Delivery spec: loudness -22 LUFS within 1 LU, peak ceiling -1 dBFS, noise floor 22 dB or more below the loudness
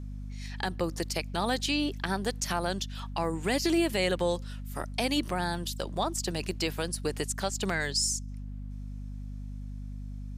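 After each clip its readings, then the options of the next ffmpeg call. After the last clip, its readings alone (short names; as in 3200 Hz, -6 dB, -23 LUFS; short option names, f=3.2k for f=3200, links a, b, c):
hum 50 Hz; harmonics up to 250 Hz; hum level -36 dBFS; loudness -30.5 LUFS; peak -14.0 dBFS; loudness target -22.0 LUFS
-> -af "bandreject=f=50:t=h:w=4,bandreject=f=100:t=h:w=4,bandreject=f=150:t=h:w=4,bandreject=f=200:t=h:w=4,bandreject=f=250:t=h:w=4"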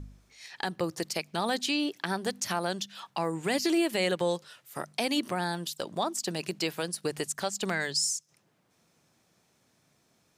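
hum none; loudness -31.0 LUFS; peak -14.5 dBFS; loudness target -22.0 LUFS
-> -af "volume=9dB"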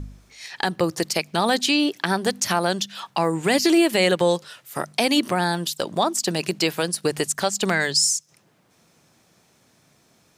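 loudness -22.0 LUFS; peak -5.5 dBFS; noise floor -61 dBFS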